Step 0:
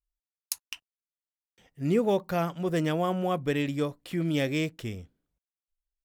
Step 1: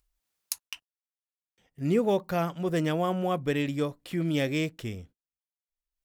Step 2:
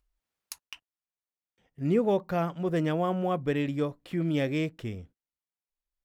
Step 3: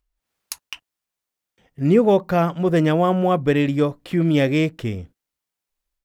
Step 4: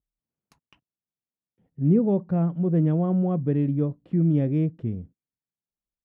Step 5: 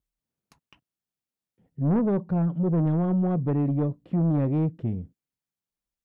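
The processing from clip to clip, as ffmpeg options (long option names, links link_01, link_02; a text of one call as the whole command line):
ffmpeg -i in.wav -af "agate=range=-33dB:threshold=-51dB:ratio=16:detection=peak,acompressor=mode=upward:threshold=-45dB:ratio=2.5" out.wav
ffmpeg -i in.wav -af "highshelf=frequency=3600:gain=-10.5" out.wav
ffmpeg -i in.wav -af "dynaudnorm=framelen=160:gausssize=3:maxgain=10dB" out.wav
ffmpeg -i in.wav -af "bandpass=frequency=160:width_type=q:width=1.2:csg=0" out.wav
ffmpeg -i in.wav -af "asoftclip=type=tanh:threshold=-20.5dB,volume=2dB" out.wav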